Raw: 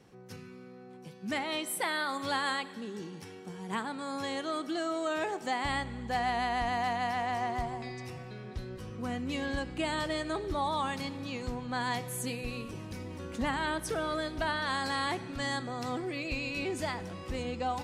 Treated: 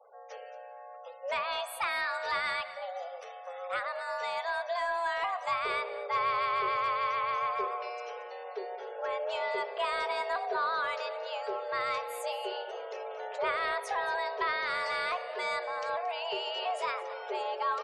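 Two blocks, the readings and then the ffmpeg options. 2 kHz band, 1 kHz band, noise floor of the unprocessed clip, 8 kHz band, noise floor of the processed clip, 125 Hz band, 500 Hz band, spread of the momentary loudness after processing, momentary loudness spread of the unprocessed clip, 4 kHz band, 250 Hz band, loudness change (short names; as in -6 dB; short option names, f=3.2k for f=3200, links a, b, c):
+2.0 dB, +2.5 dB, -49 dBFS, -9.0 dB, -47 dBFS, under -20 dB, +2.0 dB, 11 LU, 12 LU, -1.0 dB, under -15 dB, +1.0 dB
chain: -filter_complex "[0:a]bandreject=f=56.65:t=h:w=4,bandreject=f=113.3:t=h:w=4,bandreject=f=169.95:t=h:w=4,bandreject=f=226.6:t=h:w=4,bandreject=f=283.25:t=h:w=4,bandreject=f=339.9:t=h:w=4,bandreject=f=396.55:t=h:w=4,bandreject=f=453.2:t=h:w=4,bandreject=f=509.85:t=h:w=4,bandreject=f=566.5:t=h:w=4,bandreject=f=623.15:t=h:w=4,afreqshift=350,asplit=2[a][b];[b]highpass=f=720:p=1,volume=9dB,asoftclip=type=tanh:threshold=-18.5dB[c];[a][c]amix=inputs=2:normalize=0,lowpass=f=1.9k:p=1,volume=-6dB,afftfilt=real='re*gte(hypot(re,im),0.002)':imag='im*gte(hypot(re,im),0.002)':win_size=1024:overlap=0.75,adynamicequalizer=threshold=0.00355:dfrequency=1400:dqfactor=7.2:tfrequency=1400:tqfactor=7.2:attack=5:release=100:ratio=0.375:range=3:mode=cutabove:tftype=bell,asplit=2[d][e];[e]aecho=0:1:226:0.15[f];[d][f]amix=inputs=2:normalize=0"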